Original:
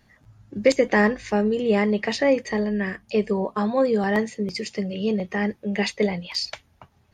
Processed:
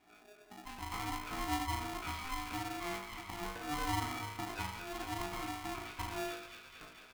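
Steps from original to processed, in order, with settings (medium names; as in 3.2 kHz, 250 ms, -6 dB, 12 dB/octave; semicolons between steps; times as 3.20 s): sawtooth pitch modulation -2 st, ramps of 492 ms; Chebyshev band-pass 100–4300 Hz, order 4; comb 4 ms, depth 43%; slow attack 353 ms; compression, threshold -28 dBFS, peak gain reduction 10.5 dB; peak limiter -26.5 dBFS, peak gain reduction 11 dB; distance through air 460 m; chord resonator A2 major, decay 0.71 s; feedback echo behind a high-pass 223 ms, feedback 79%, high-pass 1.5 kHz, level -4.5 dB; polarity switched at an audio rate 520 Hz; trim +17.5 dB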